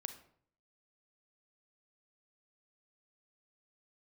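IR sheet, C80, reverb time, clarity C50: 14.5 dB, 0.60 s, 11.0 dB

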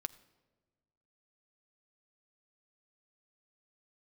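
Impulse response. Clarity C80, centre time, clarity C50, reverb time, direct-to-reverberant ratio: 20.0 dB, 3 ms, 18.5 dB, 1.3 s, 12.0 dB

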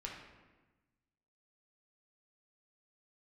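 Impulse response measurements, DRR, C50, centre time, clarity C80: -2.5 dB, 2.5 dB, 51 ms, 5.5 dB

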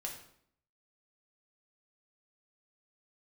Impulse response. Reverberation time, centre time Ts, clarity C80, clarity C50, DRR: 0.65 s, 27 ms, 9.5 dB, 6.0 dB, -1.0 dB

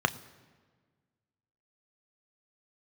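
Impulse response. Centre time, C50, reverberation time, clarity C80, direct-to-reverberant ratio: 5 ms, 18.5 dB, 1.5 s, 19.5 dB, 10.0 dB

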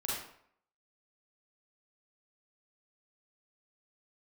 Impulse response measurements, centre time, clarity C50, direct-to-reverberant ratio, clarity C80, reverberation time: 66 ms, -1.5 dB, -6.0 dB, 4.0 dB, 0.65 s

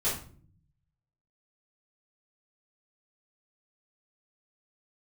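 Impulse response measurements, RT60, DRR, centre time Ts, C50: 0.50 s, -11.0 dB, 36 ms, 5.0 dB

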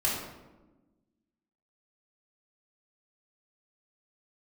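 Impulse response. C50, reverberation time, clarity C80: 2.0 dB, 1.1 s, 4.5 dB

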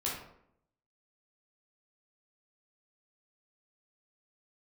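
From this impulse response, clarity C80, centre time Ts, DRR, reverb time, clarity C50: 6.5 dB, 46 ms, -5.5 dB, 0.70 s, 2.5 dB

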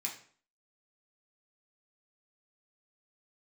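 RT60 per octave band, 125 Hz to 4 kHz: 0.50 s, 0.55 s, 0.50 s, 0.50 s, 0.45 s, 0.40 s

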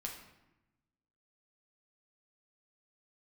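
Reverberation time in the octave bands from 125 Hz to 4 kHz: 1.5 s, 1.4 s, 0.95 s, 0.95 s, 0.90 s, 0.65 s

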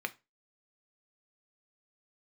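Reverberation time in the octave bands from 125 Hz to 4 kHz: 0.30 s, 0.25 s, 0.25 s, 0.25 s, 0.25 s, 0.20 s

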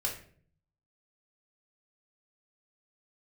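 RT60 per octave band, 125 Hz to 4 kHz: 1.0 s, 0.75 s, 0.60 s, 0.45 s, 0.45 s, 0.35 s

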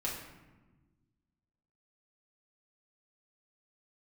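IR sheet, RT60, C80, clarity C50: 1.2 s, 6.5 dB, 4.0 dB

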